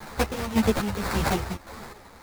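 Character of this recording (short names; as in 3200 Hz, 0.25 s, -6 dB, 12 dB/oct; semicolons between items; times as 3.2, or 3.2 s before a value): a quantiser's noise floor 8-bit, dither triangular; chopped level 1.8 Hz, depth 60%, duty 45%; aliases and images of a low sample rate 3000 Hz, jitter 20%; a shimmering, thickened sound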